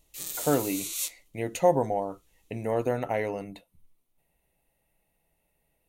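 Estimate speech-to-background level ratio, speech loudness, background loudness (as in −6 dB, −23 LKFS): 3.5 dB, −29.0 LKFS, −32.5 LKFS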